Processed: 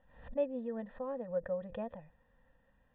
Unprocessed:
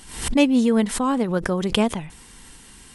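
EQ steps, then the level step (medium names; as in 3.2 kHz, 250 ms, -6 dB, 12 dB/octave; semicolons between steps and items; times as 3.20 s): cascade formant filter e; static phaser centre 920 Hz, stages 4; 0.0 dB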